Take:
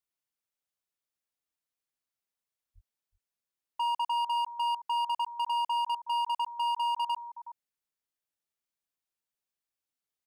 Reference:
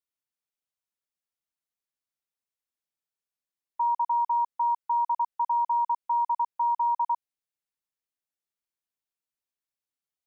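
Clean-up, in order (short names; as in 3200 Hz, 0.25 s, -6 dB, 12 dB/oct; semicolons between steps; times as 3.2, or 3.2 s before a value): clip repair -27.5 dBFS; 2.74–2.86 HPF 140 Hz 24 dB/oct; inverse comb 0.37 s -18 dB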